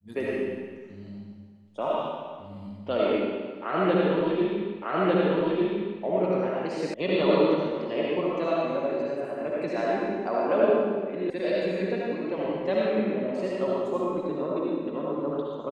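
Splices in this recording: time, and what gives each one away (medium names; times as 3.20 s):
4.82 s: repeat of the last 1.2 s
6.94 s: sound stops dead
11.30 s: sound stops dead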